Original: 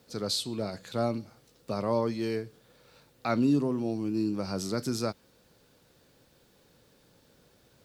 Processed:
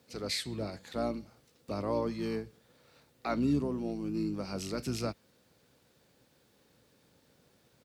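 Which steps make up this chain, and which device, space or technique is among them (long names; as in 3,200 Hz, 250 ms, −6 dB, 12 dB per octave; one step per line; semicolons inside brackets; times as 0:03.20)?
high-pass filter 93 Hz 24 dB per octave
octave pedal (pitch-shifted copies added −12 semitones −7 dB)
level −4.5 dB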